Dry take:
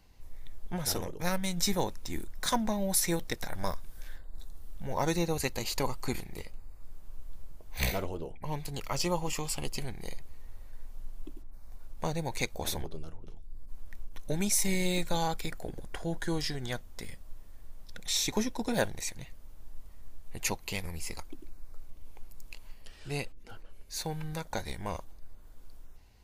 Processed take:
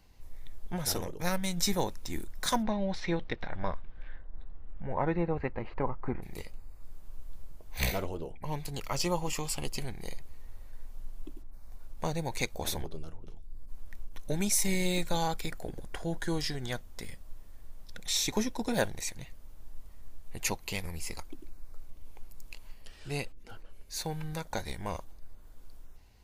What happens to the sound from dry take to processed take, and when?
0:02.62–0:06.22: low-pass filter 4,200 Hz → 1,600 Hz 24 dB per octave

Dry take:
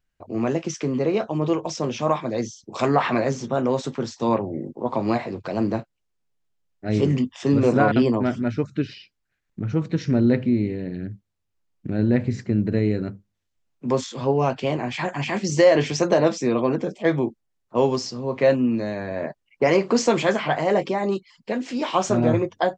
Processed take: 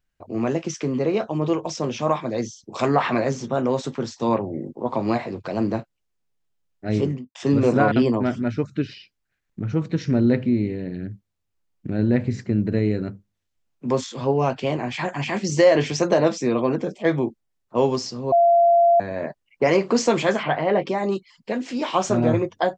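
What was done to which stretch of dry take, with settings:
0:06.90–0:07.35: fade out and dull
0:18.32–0:19.00: beep over 686 Hz −12 dBFS
0:20.43–0:20.87: low-pass filter 3,700 Hz 24 dB per octave

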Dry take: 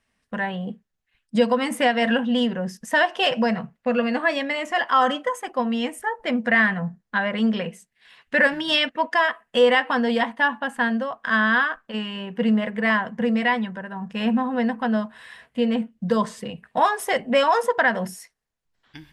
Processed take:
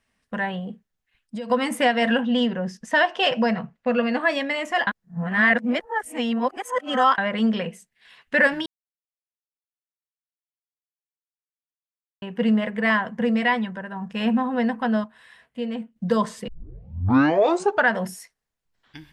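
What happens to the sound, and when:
0:00.59–0:01.50: downward compressor, threshold −29 dBFS
0:02.21–0:04.21: low-pass filter 6,700 Hz
0:04.87–0:07.18: reverse
0:08.66–0:12.22: silence
0:15.04–0:15.96: clip gain −7 dB
0:16.48: tape start 1.44 s

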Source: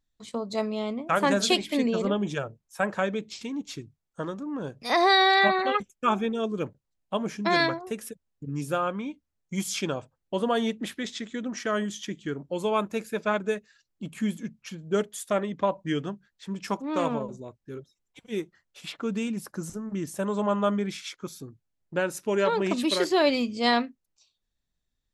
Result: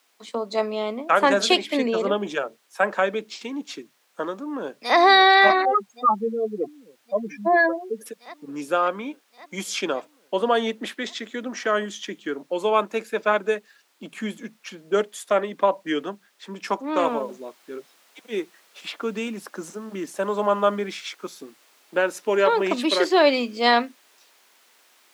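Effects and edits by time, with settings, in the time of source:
0:04.34–0:04.97: delay throw 560 ms, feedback 75%, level −10 dB
0:05.65–0:08.06: expanding power law on the bin magnitudes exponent 3.3
0:17.04: noise floor change −66 dB −59 dB
whole clip: Bessel high-pass filter 370 Hz, order 8; high-shelf EQ 6,100 Hz −11.5 dB; level +7 dB

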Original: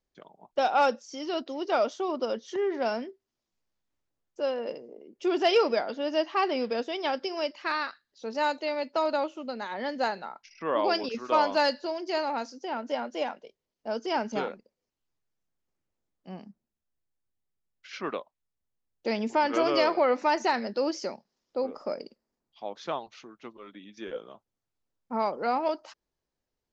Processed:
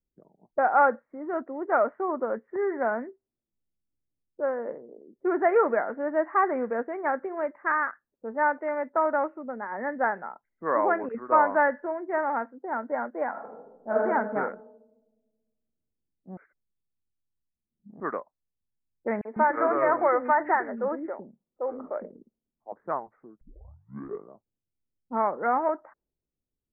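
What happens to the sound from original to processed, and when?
0:13.30–0:14.00: thrown reverb, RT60 1.7 s, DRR −5.5 dB
0:16.37–0:18.00: reverse
0:19.21–0:22.72: three-band delay without the direct sound highs, mids, lows 40/150 ms, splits 340/2,400 Hz
0:23.41: tape start 0.88 s
whole clip: low-pass that shuts in the quiet parts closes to 300 Hz, open at −25 dBFS; dynamic equaliser 1,500 Hz, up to +6 dB, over −39 dBFS, Q 0.84; Butterworth low-pass 2,000 Hz 72 dB per octave

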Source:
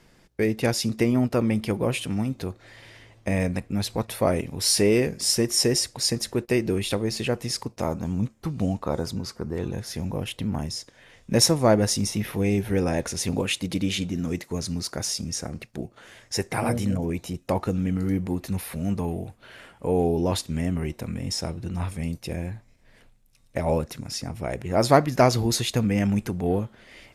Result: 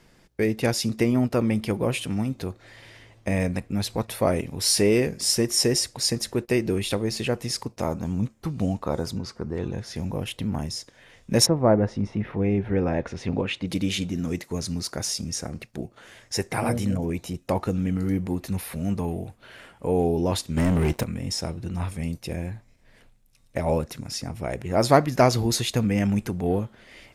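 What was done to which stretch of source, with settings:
0:09.18–0:09.96: high-frequency loss of the air 57 metres
0:11.45–0:13.66: low-pass filter 1,200 Hz → 3,000 Hz
0:20.57–0:21.04: leveller curve on the samples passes 3

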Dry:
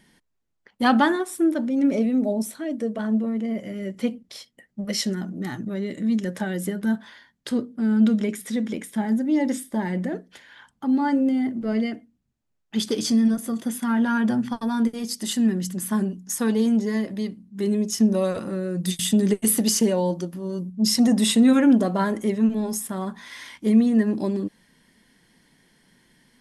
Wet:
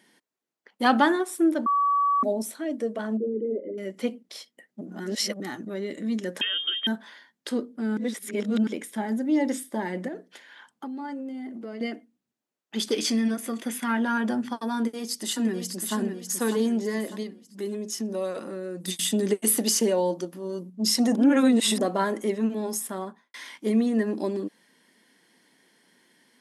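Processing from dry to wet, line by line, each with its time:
0:01.66–0:02.23: beep over 1,140 Hz −18.5 dBFS
0:03.17–0:03.78: spectral envelope exaggerated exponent 3
0:04.81–0:05.40: reverse
0:06.41–0:06.87: voice inversion scrambler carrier 3,400 Hz
0:07.97–0:08.67: reverse
0:10.08–0:11.81: downward compressor, threshold −30 dBFS
0:12.93–0:13.97: parametric band 2,300 Hz +9 dB 0.89 octaves
0:14.76–0:15.96: delay throw 600 ms, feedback 40%, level −6.5 dB
0:17.23–0:18.88: downward compressor 1.5 to 1, threshold −33 dBFS
0:21.15–0:21.81: reverse
0:22.92–0:23.34: fade out and dull
whole clip: Chebyshev high-pass filter 330 Hz, order 2

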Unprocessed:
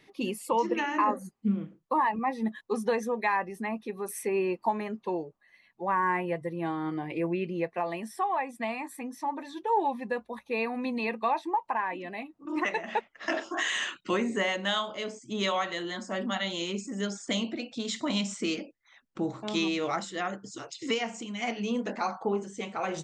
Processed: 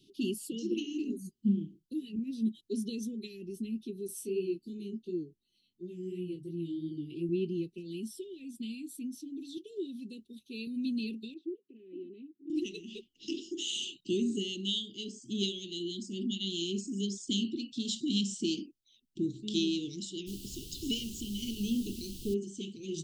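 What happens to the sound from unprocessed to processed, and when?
0:04.07–0:07.29: chorus effect 2.8 Hz, delay 17 ms, depth 5.2 ms
0:09.57–0:10.67: high-pass filter 280 Hz 6 dB per octave
0:11.34–0:12.50: flat-topped band-pass 660 Hz, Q 0.56
0:20.26–0:22.33: background noise pink −44 dBFS
whole clip: Chebyshev band-stop filter 390–2,900 Hz, order 5

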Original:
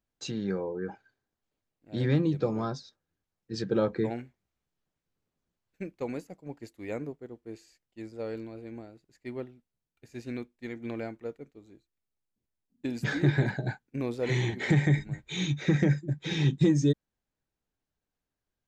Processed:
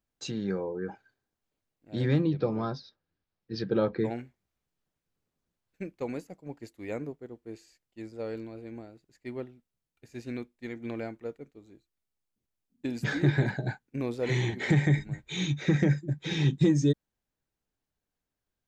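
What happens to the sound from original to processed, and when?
0:02.23–0:04.00: Butterworth low-pass 5,400 Hz 48 dB per octave

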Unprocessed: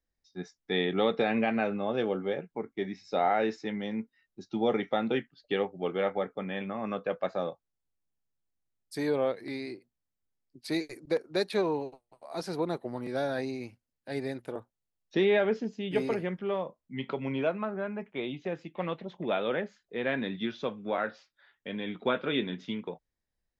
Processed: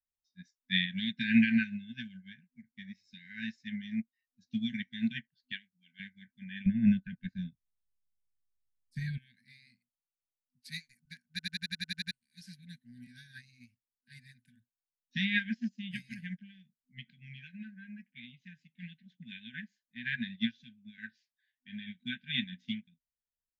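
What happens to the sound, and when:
0:05.52–0:06.00: high-pass filter 710 Hz 6 dB per octave
0:06.66–0:09.18: spectral tilt −3.5 dB per octave
0:11.30: stutter in place 0.09 s, 9 plays
whole clip: brick-wall band-stop 250–1,500 Hz; high-shelf EQ 4,300 Hz +4 dB; expander for the loud parts 2.5 to 1, over −44 dBFS; level +8 dB

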